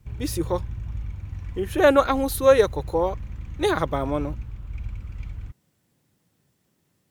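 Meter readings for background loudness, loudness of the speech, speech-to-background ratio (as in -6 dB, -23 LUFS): -36.0 LUFS, -22.5 LUFS, 13.5 dB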